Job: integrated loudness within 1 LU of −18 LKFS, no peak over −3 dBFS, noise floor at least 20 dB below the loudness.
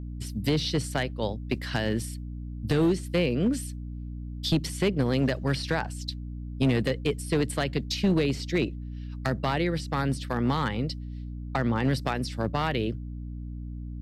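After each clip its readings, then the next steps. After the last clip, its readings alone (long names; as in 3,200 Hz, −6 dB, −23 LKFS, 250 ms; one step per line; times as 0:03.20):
share of clipped samples 0.9%; peaks flattened at −17.5 dBFS; mains hum 60 Hz; hum harmonics up to 300 Hz; level of the hum −34 dBFS; integrated loudness −28.0 LKFS; sample peak −17.5 dBFS; target loudness −18.0 LKFS
→ clipped peaks rebuilt −17.5 dBFS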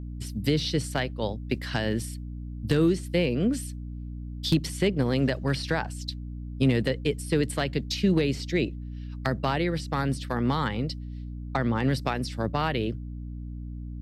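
share of clipped samples 0.0%; mains hum 60 Hz; hum harmonics up to 240 Hz; level of the hum −34 dBFS
→ mains-hum notches 60/120/180/240 Hz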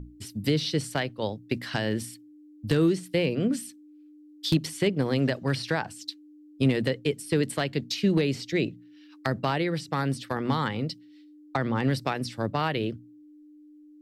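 mains hum none found; integrated loudness −28.0 LKFS; sample peak −9.5 dBFS; target loudness −18.0 LKFS
→ level +10 dB
brickwall limiter −3 dBFS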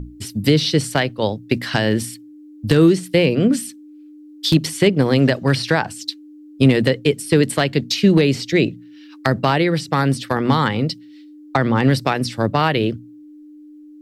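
integrated loudness −18.0 LKFS; sample peak −3.0 dBFS; background noise floor −42 dBFS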